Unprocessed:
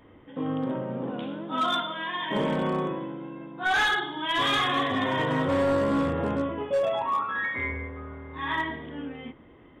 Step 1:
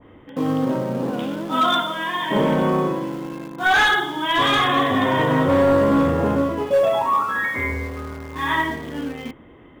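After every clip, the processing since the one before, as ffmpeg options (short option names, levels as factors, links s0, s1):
-filter_complex "[0:a]asplit=2[s0][s1];[s1]acrusher=bits=5:mix=0:aa=0.000001,volume=0.251[s2];[s0][s2]amix=inputs=2:normalize=0,adynamicequalizer=threshold=0.0141:dfrequency=1700:dqfactor=0.7:tfrequency=1700:tqfactor=0.7:attack=5:release=100:ratio=0.375:range=2:mode=cutabove:tftype=highshelf,volume=2"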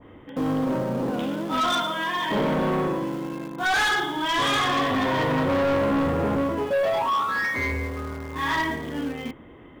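-af "asoftclip=type=tanh:threshold=0.106"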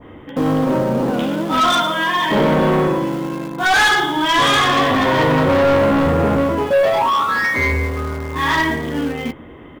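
-filter_complex "[0:a]asplit=2[s0][s1];[s1]adelay=13,volume=0.251[s2];[s0][s2]amix=inputs=2:normalize=0,volume=2.51"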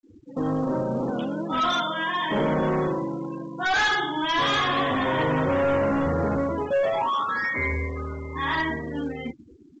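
-af "afftfilt=real='re*gte(hypot(re,im),0.0631)':imag='im*gte(hypot(re,im),0.0631)':win_size=1024:overlap=0.75,volume=0.376" -ar 16000 -c:a pcm_mulaw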